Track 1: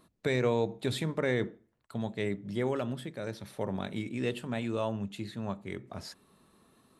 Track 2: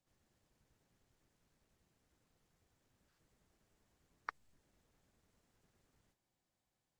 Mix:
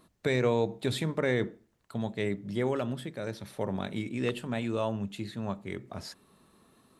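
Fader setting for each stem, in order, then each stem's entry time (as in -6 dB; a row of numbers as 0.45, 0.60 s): +1.5, -0.5 dB; 0.00, 0.00 s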